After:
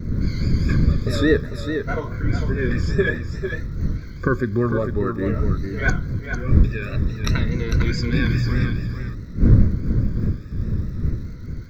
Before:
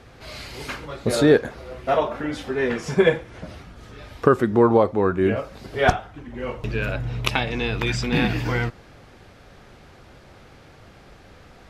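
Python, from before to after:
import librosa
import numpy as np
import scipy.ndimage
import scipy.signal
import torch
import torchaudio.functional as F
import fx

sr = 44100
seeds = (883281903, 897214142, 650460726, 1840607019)

p1 = fx.spec_ripple(x, sr, per_octave=1.9, drift_hz=0.53, depth_db=17)
p2 = fx.dmg_wind(p1, sr, seeds[0], corner_hz=130.0, level_db=-18.0)
p3 = fx.dmg_crackle(p2, sr, seeds[1], per_s=170.0, level_db=-37.0)
p4 = fx.fixed_phaser(p3, sr, hz=2900.0, stages=6)
p5 = p4 + fx.echo_single(p4, sr, ms=450, db=-7.5, dry=0)
p6 = fx.vibrato(p5, sr, rate_hz=4.8, depth_cents=56.0)
y = p6 * librosa.db_to_amplitude(-3.5)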